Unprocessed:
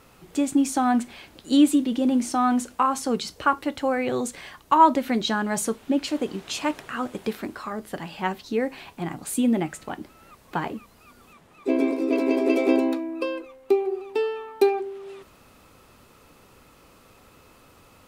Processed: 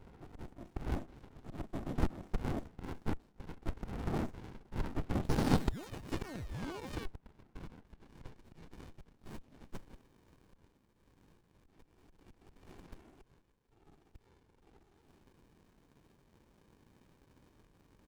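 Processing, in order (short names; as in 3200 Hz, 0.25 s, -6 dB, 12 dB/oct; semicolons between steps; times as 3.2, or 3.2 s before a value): HPF 99 Hz; notches 60/120/180 Hz; comb 5.3 ms, depth 30%; whisperiser; auto swell 0.727 s; band-pass sweep 660 Hz -> 7000 Hz, 6.87–9.93; painted sound fall, 5.29–7.06, 1100–5300 Hz -38 dBFS; in parallel at -11 dB: sample-and-hold 24×; on the sum: downsampling 32000 Hz; running maximum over 65 samples; gain +8 dB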